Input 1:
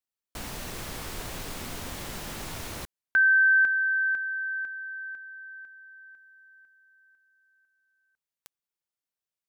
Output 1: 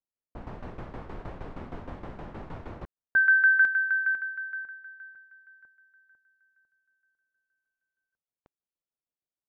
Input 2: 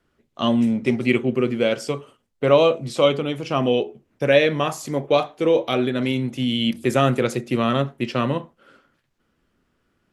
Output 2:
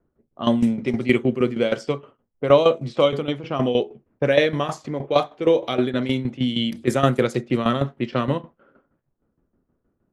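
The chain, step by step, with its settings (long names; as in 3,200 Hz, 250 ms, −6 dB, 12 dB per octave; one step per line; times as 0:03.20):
dynamic equaliser 2,600 Hz, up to −7 dB, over −46 dBFS, Q 7.6
low-pass that shuts in the quiet parts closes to 740 Hz, open at −16 dBFS
shaped tremolo saw down 6.4 Hz, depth 75%
level +3 dB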